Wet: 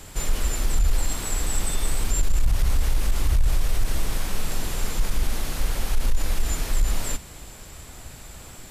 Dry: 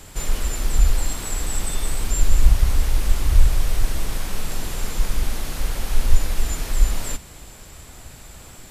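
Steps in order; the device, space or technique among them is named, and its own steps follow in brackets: soft clipper into limiter (saturation -5.5 dBFS, distortion -18 dB; peak limiter -12.5 dBFS, peak gain reduction 6 dB)

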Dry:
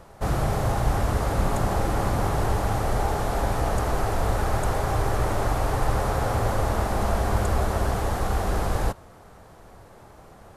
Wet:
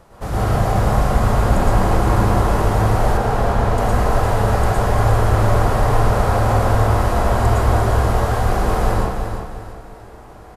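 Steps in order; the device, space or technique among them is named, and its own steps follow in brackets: bathroom (reverberation RT60 0.90 s, pre-delay 105 ms, DRR -6.5 dB); 3.17–3.78 s: treble shelf 5.9 kHz -9 dB; feedback delay 349 ms, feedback 35%, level -7.5 dB; trim -1 dB

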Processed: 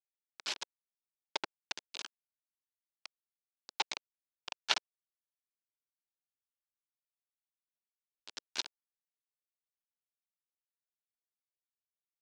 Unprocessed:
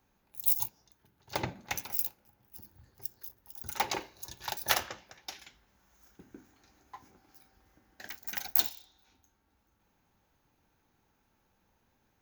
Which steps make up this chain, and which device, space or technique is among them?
hand-held game console (bit crusher 4-bit; cabinet simulation 430–5300 Hz, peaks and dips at 510 Hz -7 dB, 730 Hz -8 dB, 1.2 kHz -7 dB, 1.9 kHz -7 dB); trim +1 dB

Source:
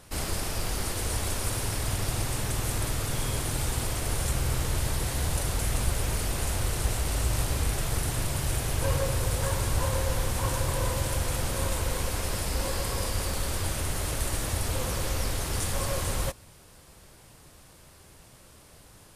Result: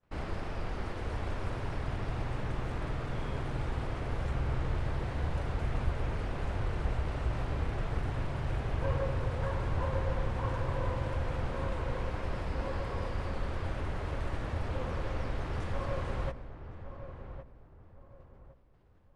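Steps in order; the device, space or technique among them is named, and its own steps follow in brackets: hearing-loss simulation (low-pass 2 kHz 12 dB/octave; expander -44 dBFS); hum notches 50/100 Hz; filtered feedback delay 1111 ms, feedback 32%, low-pass 1.3 kHz, level -10 dB; trim -4 dB

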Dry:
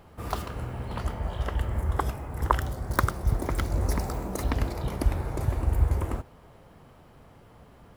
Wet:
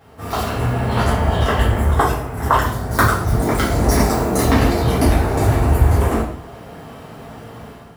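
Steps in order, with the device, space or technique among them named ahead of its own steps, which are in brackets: far laptop microphone (reverberation RT60 0.55 s, pre-delay 4 ms, DRR -8 dB; high-pass 140 Hz 6 dB/octave; level rider gain up to 10 dB)

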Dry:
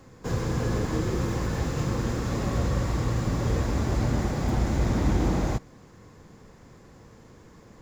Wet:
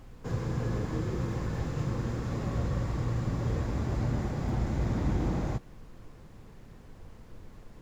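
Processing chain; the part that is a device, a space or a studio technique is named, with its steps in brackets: car interior (peaking EQ 130 Hz +4 dB 0.93 oct; treble shelf 5 kHz -7.5 dB; brown noise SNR 16 dB); trim -6.5 dB

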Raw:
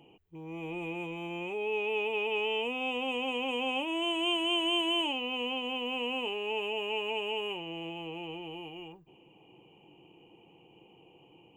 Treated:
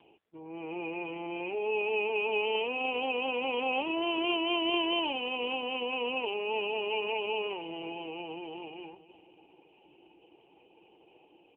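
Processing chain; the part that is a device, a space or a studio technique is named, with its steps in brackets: satellite phone (band-pass 330–3000 Hz; delay 510 ms -15.5 dB; trim +3.5 dB; AMR-NB 4.75 kbps 8 kHz)

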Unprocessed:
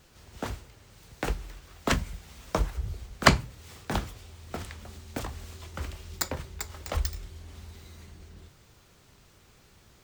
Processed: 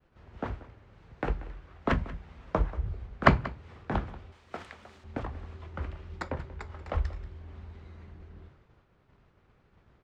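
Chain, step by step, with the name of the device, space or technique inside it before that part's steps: 4.32–5.04 s: RIAA curve recording; hearing-loss simulation (low-pass 1.8 kHz 12 dB/octave; expander -54 dBFS); delay 185 ms -17.5 dB

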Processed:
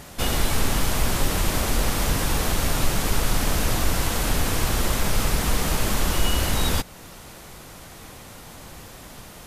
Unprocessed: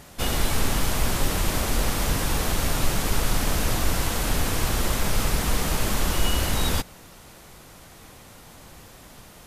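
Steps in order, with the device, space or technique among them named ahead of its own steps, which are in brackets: parallel compression (in parallel at -3 dB: compression, threshold -33 dBFS, peak gain reduction 17 dB)

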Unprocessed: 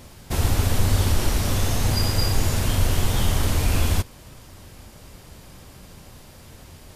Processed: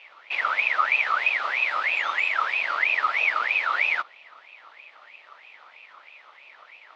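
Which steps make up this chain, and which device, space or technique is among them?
voice changer toy (ring modulator with a swept carrier 1.9 kHz, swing 35%, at 3.1 Hz; cabinet simulation 570–3600 Hz, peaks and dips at 600 Hz +6 dB, 910 Hz +4 dB, 1.6 kHz -9 dB)

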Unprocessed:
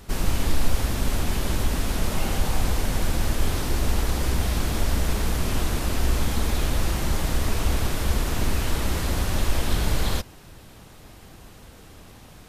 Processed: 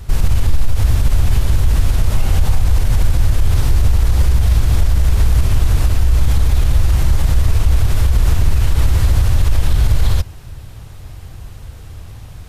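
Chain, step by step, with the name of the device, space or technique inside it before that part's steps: car stereo with a boomy subwoofer (resonant low shelf 150 Hz +11 dB, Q 1.5; peak limiter -8.5 dBFS, peak gain reduction 11.5 dB); trim +4 dB

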